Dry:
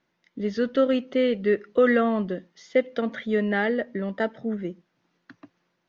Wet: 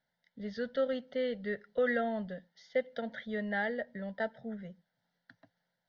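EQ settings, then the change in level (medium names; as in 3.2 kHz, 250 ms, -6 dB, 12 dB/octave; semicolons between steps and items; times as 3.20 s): static phaser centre 1.7 kHz, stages 8; -6.5 dB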